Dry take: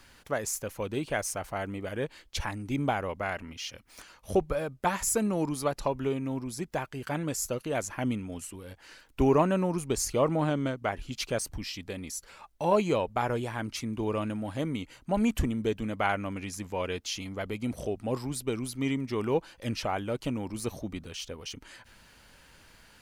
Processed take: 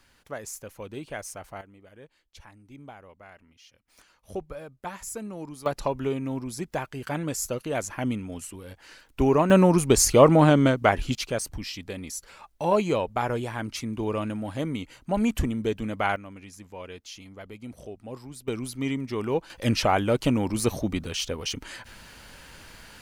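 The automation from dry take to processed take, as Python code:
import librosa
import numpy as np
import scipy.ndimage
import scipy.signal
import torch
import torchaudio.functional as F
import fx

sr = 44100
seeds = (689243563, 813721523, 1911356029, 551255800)

y = fx.gain(x, sr, db=fx.steps((0.0, -5.5), (1.61, -16.5), (3.88, -8.5), (5.66, 2.0), (9.5, 10.5), (11.15, 2.0), (16.16, -8.0), (18.48, 1.0), (19.5, 9.0)))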